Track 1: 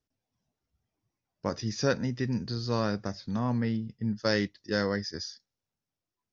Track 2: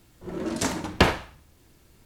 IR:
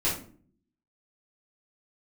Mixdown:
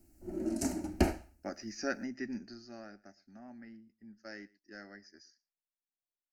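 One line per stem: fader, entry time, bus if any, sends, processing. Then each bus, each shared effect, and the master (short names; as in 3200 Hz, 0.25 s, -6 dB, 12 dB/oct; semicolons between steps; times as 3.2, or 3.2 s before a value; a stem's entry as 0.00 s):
2.36 s -3 dB -> 2.88 s -15.5 dB, 0.00 s, no send, echo send -23.5 dB, bell 79 Hz -14.5 dB 1.7 oct; notch 930 Hz, Q 8.3
-2.5 dB, 0.00 s, no send, no echo send, EQ curve 380 Hz 0 dB, 1800 Hz -15 dB, 3900 Hz -3 dB; auto duck -9 dB, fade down 0.35 s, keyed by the first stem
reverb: off
echo: echo 0.117 s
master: fixed phaser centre 710 Hz, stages 8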